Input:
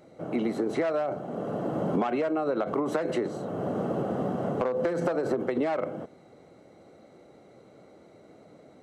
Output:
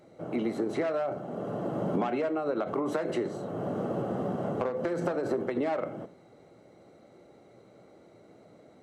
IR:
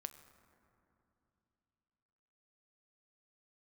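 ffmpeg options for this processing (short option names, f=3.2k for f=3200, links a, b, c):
-filter_complex "[1:a]atrim=start_sample=2205,atrim=end_sample=6615,asetrate=70560,aresample=44100[a];[0:a][a]afir=irnorm=-1:irlink=0,volume=6dB"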